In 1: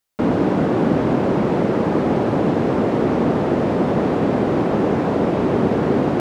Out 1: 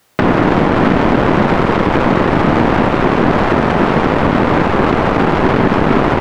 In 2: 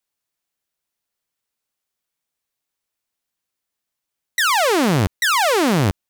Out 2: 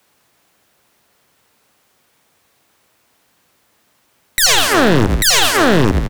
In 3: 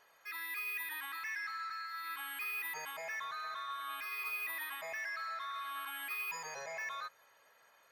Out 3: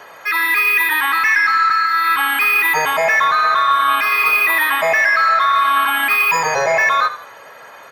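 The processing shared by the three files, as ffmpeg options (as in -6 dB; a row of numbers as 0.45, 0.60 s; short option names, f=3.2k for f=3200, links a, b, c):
-filter_complex "[0:a]acrossover=split=470|1200[a][b][c];[b]asoftclip=type=hard:threshold=-31.5dB[d];[a][d][c]amix=inputs=3:normalize=0,highpass=72,asplit=4[e][f][g][h];[f]adelay=82,afreqshift=-34,volume=-13.5dB[i];[g]adelay=164,afreqshift=-68,volume=-23.1dB[j];[h]adelay=246,afreqshift=-102,volume=-32.8dB[k];[e][i][j][k]amix=inputs=4:normalize=0,acontrast=79,highshelf=f=2.6k:g=-10.5,aeval=exprs='0.708*(cos(1*acos(clip(val(0)/0.708,-1,1)))-cos(1*PI/2))+0.126*(cos(3*acos(clip(val(0)/0.708,-1,1)))-cos(3*PI/2))+0.0316*(cos(4*acos(clip(val(0)/0.708,-1,1)))-cos(4*PI/2))+0.158*(cos(7*acos(clip(val(0)/0.708,-1,1)))-cos(7*PI/2))+0.01*(cos(8*acos(clip(val(0)/0.708,-1,1)))-cos(8*PI/2))':c=same,acompressor=threshold=-26dB:ratio=3,alimiter=level_in=24dB:limit=-1dB:release=50:level=0:latency=1,volume=-2dB"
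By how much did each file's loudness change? +6.0, +5.0, +26.0 LU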